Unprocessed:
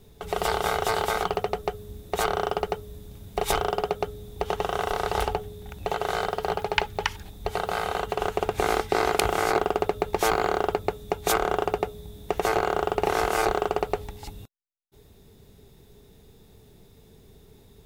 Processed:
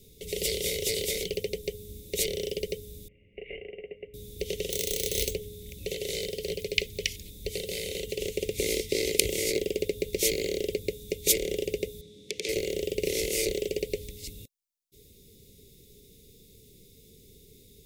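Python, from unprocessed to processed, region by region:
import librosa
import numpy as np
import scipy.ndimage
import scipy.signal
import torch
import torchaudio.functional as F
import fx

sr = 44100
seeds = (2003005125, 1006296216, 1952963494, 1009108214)

y = fx.chain(x, sr, fx.cvsd(bps=32000),
    fx.cheby_ripple(hz=2900.0, ripple_db=9),
    fx.low_shelf(hz=350.0, db=-6.5), at=(3.08, 4.14))
y = fx.chain(y, sr, fx.peak_eq(hz=4000.0, db=6.5, octaves=0.32),
    fx.sample_hold(seeds[0], rate_hz=7200.0, jitter_pct=0), at=(4.7, 5.35))
y = fx.chain(y, sr, fx.highpass(hz=180.0, slope=12),
    fx.air_absorb(metres=96.0),
    fx.transformer_sat(knee_hz=3500.0), at=(12.01, 12.49))
y = scipy.signal.sosfilt(scipy.signal.cheby1(4, 1.0, [540.0, 2100.0], 'bandstop', fs=sr, output='sos'), y)
y = fx.bass_treble(y, sr, bass_db=-2, treble_db=9)
y = y * librosa.db_to_amplitude(-1.5)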